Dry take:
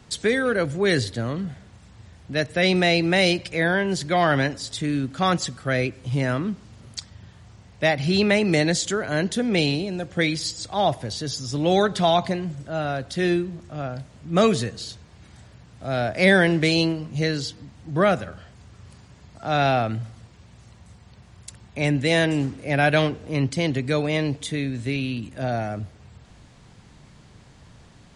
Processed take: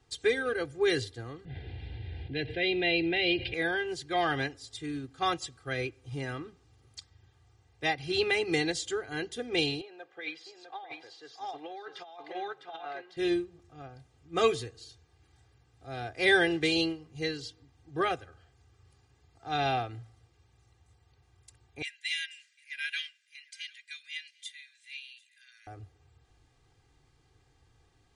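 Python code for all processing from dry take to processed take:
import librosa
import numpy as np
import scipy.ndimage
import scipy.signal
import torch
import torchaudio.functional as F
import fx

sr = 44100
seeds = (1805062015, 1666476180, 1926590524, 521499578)

y = fx.chain(x, sr, fx.lowpass(hz=4100.0, slope=24),
    fx.fixed_phaser(hz=2800.0, stages=4),
    fx.env_flatten(amount_pct=70), at=(1.45, 3.54))
y = fx.chain(y, sr, fx.bandpass_edges(low_hz=600.0, high_hz=2700.0),
    fx.echo_single(ms=654, db=-5.0),
    fx.over_compress(threshold_db=-28.0, ratio=-1.0), at=(9.81, 13.17))
y = fx.chain(y, sr, fx.steep_highpass(hz=1700.0, slope=48),
    fx.echo_single(ms=749, db=-19.0), at=(21.82, 25.67))
y = y + 0.96 * np.pad(y, (int(2.5 * sr / 1000.0), 0))[:len(y)]
y = fx.dynamic_eq(y, sr, hz=3100.0, q=2.1, threshold_db=-36.0, ratio=4.0, max_db=5)
y = fx.upward_expand(y, sr, threshold_db=-31.0, expansion=1.5)
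y = y * librosa.db_to_amplitude(-8.5)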